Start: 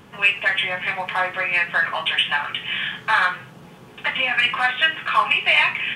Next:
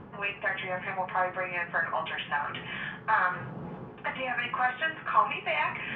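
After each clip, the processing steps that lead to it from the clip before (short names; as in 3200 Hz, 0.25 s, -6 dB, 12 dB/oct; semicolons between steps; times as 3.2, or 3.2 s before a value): LPF 1200 Hz 12 dB/oct; reverse; upward compressor, threshold -27 dBFS; reverse; gain -3 dB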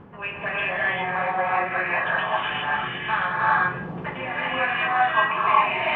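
non-linear reverb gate 0.43 s rising, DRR -6 dB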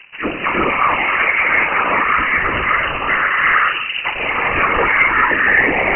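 sample leveller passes 3; whisperiser; inverted band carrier 2900 Hz; gain -1 dB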